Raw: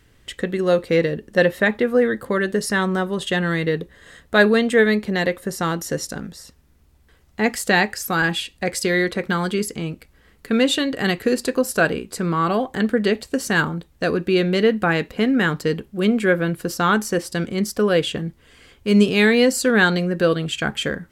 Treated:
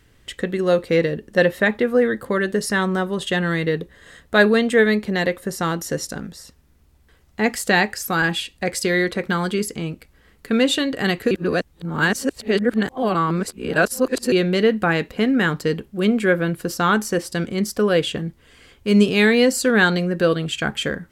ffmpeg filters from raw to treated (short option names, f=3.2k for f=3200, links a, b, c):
-filter_complex "[0:a]asplit=3[a][b][c];[a]atrim=end=11.312[d];[b]atrim=start=11.308:end=14.322,asetpts=PTS-STARTPTS,areverse[e];[c]atrim=start=14.318[f];[d][e]acrossfade=d=0.004:c1=hsin:c2=hsin[g];[g][f]acrossfade=d=0.004:c1=hsin:c2=hsin"